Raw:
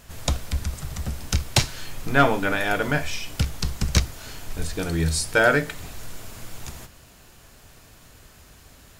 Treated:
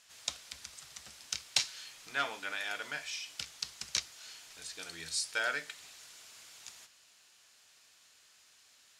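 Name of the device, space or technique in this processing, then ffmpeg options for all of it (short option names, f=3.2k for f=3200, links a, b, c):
piezo pickup straight into a mixer: -af "lowpass=5.1k,aderivative"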